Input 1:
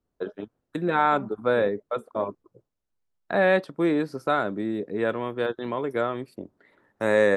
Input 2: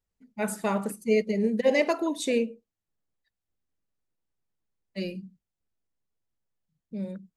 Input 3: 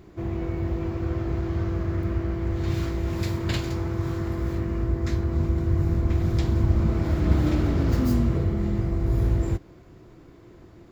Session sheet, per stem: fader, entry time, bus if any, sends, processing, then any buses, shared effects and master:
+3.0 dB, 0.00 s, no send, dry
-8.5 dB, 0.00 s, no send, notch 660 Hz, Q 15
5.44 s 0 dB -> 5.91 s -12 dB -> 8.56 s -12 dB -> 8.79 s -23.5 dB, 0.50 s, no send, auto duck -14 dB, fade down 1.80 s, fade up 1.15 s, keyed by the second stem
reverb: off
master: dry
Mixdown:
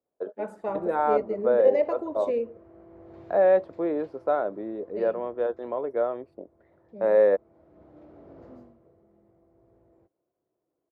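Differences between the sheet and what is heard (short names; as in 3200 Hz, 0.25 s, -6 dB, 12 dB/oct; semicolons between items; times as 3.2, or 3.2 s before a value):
stem 2 -8.5 dB -> +2.5 dB; master: extra band-pass 590 Hz, Q 2.1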